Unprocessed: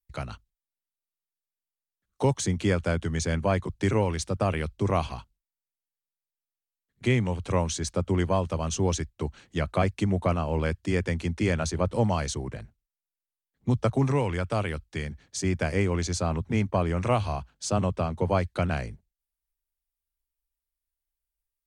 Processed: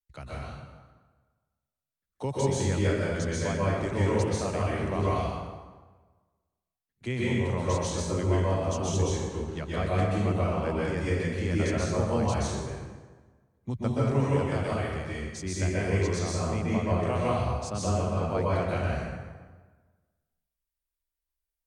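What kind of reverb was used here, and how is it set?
plate-style reverb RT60 1.4 s, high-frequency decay 0.7×, pre-delay 0.115 s, DRR -7 dB; gain -9 dB

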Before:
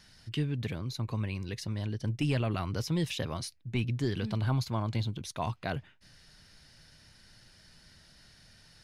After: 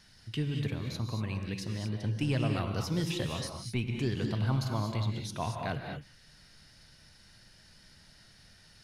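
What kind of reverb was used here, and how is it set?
non-linear reverb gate 0.26 s rising, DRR 3 dB; gain -1.5 dB

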